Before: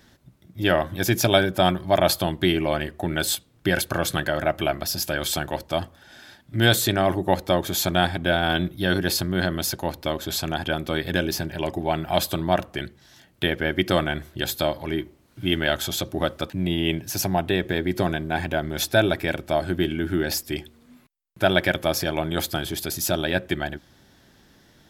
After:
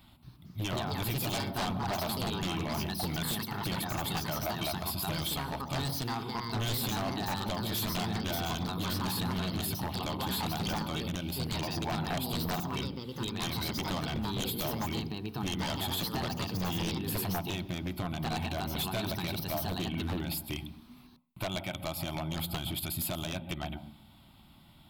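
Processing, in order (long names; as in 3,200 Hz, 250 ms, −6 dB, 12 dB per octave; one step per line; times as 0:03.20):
downward compressor 4 to 1, threshold −27 dBFS, peak gain reduction 13 dB
phaser with its sweep stopped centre 1,700 Hz, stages 6
on a send at −15 dB: convolution reverb RT60 0.45 s, pre-delay 120 ms
on the sum: delay with pitch and tempo change per echo 227 ms, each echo +3 semitones, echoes 2
wave folding −26.5 dBFS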